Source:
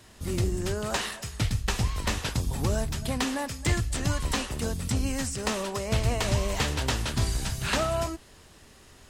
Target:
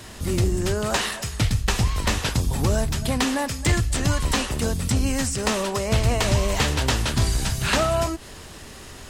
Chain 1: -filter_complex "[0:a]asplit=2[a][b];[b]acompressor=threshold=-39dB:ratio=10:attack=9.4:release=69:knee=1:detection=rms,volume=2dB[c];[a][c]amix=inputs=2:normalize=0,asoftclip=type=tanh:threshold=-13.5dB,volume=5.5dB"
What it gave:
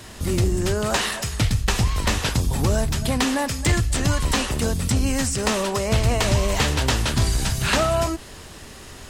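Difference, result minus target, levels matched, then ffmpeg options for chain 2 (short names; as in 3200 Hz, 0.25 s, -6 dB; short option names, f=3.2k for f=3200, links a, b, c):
compressor: peak gain reduction -9.5 dB
-filter_complex "[0:a]asplit=2[a][b];[b]acompressor=threshold=-49.5dB:ratio=10:attack=9.4:release=69:knee=1:detection=rms,volume=2dB[c];[a][c]amix=inputs=2:normalize=0,asoftclip=type=tanh:threshold=-13.5dB,volume=5.5dB"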